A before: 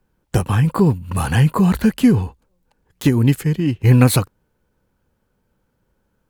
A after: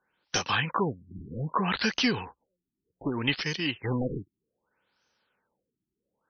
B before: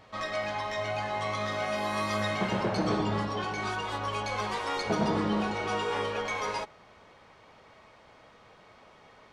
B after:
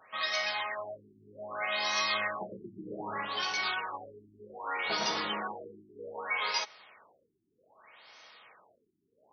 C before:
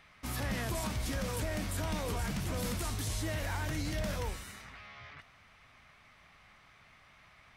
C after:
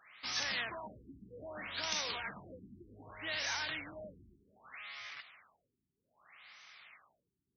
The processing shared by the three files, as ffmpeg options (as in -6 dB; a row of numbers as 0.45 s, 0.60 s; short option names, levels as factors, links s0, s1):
-af "aderivative,aeval=exprs='0.501*sin(PI/2*8.91*val(0)/0.501)':c=same,afftfilt=real='re*lt(b*sr/1024,380*pow(6400/380,0.5+0.5*sin(2*PI*0.64*pts/sr)))':imag='im*lt(b*sr/1024,380*pow(6400/380,0.5+0.5*sin(2*PI*0.64*pts/sr)))':win_size=1024:overlap=0.75,volume=0.398"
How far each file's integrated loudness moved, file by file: -12.5 LU, -2.0 LU, -3.0 LU